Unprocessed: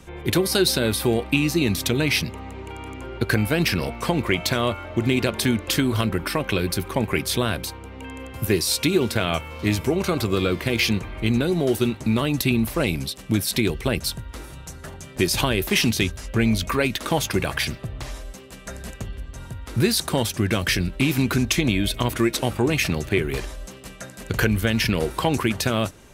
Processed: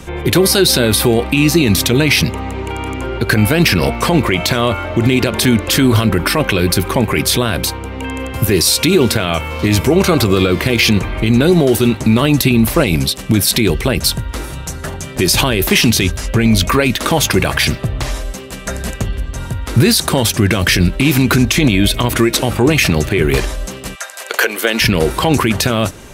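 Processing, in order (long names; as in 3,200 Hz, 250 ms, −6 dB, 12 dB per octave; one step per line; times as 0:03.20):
0:23.94–0:24.80: high-pass filter 850 Hz → 280 Hz 24 dB per octave
boost into a limiter +14 dB
level −1 dB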